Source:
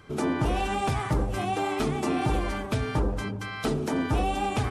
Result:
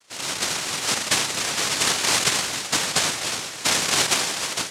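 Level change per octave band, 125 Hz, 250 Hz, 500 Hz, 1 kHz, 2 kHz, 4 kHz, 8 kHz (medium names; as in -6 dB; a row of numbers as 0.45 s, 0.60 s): -10.5 dB, -7.5 dB, -2.5 dB, 0.0 dB, +9.5 dB, +18.0 dB, +22.5 dB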